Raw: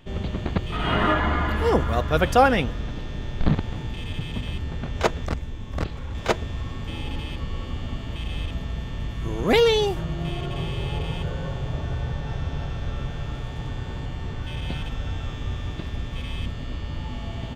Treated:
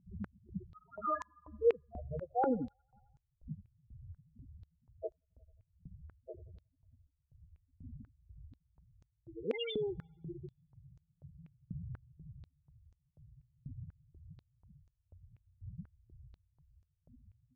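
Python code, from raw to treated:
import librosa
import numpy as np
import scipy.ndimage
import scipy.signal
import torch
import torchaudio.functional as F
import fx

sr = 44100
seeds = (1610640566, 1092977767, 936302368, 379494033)

y = fx.spec_topn(x, sr, count=4)
y = fx.echo_wet_bandpass(y, sr, ms=89, feedback_pct=52, hz=1500.0, wet_db=-19.0)
y = fx.filter_held_bandpass(y, sr, hz=4.1, low_hz=220.0, high_hz=6600.0)
y = y * 10.0 ** (3.0 / 20.0)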